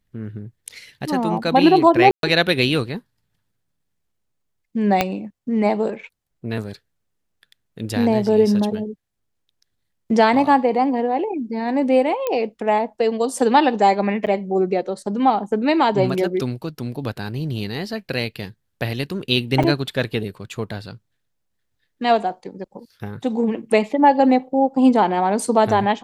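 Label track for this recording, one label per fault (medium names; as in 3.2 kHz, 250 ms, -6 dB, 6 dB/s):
2.110000	2.230000	dropout 122 ms
5.010000	5.010000	pop -3 dBFS
12.270000	12.270000	pop -10 dBFS
14.260000	14.270000	dropout 8.1 ms
19.630000	19.640000	dropout 5.8 ms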